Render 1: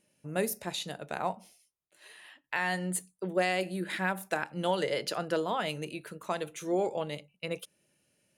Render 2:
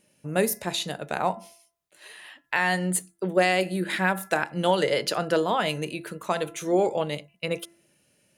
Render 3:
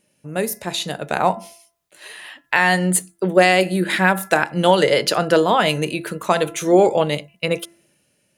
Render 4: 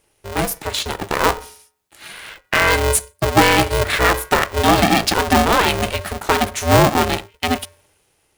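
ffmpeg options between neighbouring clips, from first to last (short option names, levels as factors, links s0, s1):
-af "bandreject=f=338.7:t=h:w=4,bandreject=f=677.4:t=h:w=4,bandreject=f=1016.1:t=h:w=4,bandreject=f=1354.8:t=h:w=4,bandreject=f=1693.5:t=h:w=4,bandreject=f=2032.2:t=h:w=4,volume=2.24"
-af "dynaudnorm=f=150:g=11:m=3.76"
-af "asoftclip=type=tanh:threshold=0.596,aeval=exprs='val(0)*sgn(sin(2*PI*250*n/s))':c=same,volume=1.26"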